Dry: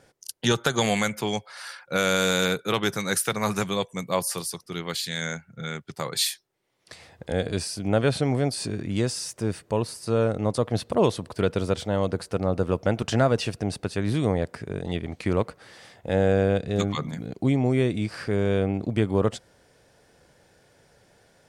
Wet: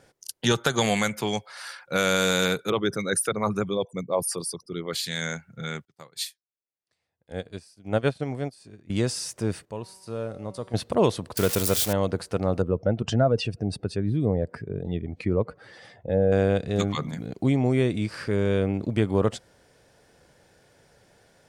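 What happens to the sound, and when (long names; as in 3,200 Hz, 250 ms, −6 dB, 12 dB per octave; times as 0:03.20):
0:02.70–0:04.93: spectral envelope exaggerated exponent 2
0:05.85–0:08.90: expander for the loud parts 2.5 to 1, over −39 dBFS
0:09.65–0:10.74: tuned comb filter 190 Hz, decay 1.6 s, mix 70%
0:11.37–0:11.93: spike at every zero crossing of −16.5 dBFS
0:12.62–0:16.32: expanding power law on the bin magnitudes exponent 1.6
0:17.98–0:18.95: notch filter 730 Hz, Q 6.2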